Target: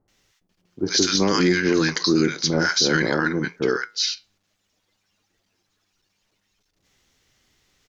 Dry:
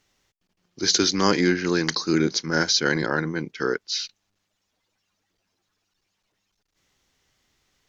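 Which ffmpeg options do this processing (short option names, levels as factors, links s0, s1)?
-filter_complex "[0:a]flanger=delay=8.5:depth=2.9:regen=-76:speed=0.56:shape=triangular,acrossover=split=920[s0][s1];[s1]adelay=80[s2];[s0][s2]amix=inputs=2:normalize=0,alimiter=level_in=7.08:limit=0.891:release=50:level=0:latency=1,volume=0.398"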